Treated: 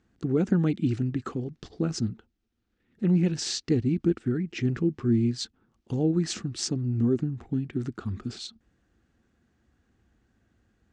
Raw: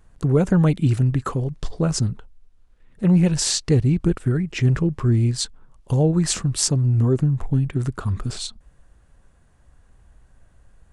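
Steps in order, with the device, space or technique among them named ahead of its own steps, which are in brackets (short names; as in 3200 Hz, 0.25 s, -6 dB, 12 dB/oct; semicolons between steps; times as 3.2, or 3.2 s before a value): car door speaker (speaker cabinet 90–6500 Hz, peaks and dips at 140 Hz -6 dB, 230 Hz +8 dB, 330 Hz +7 dB, 590 Hz -8 dB, 1000 Hz -9 dB); gain -7 dB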